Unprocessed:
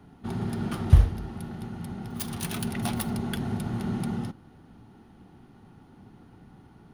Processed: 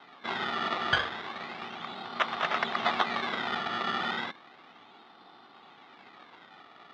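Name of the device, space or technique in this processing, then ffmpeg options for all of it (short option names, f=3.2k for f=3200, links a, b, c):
circuit-bent sampling toy: -af "acrusher=samples=19:mix=1:aa=0.000001:lfo=1:lforange=19:lforate=0.33,highpass=570,equalizer=f=690:t=q:w=4:g=4,equalizer=f=1.2k:t=q:w=4:g=10,equalizer=f=2k:t=q:w=4:g=5,equalizer=f=3.6k:t=q:w=4:g=8,lowpass=f=4.2k:w=0.5412,lowpass=f=4.2k:w=1.3066,volume=4.5dB"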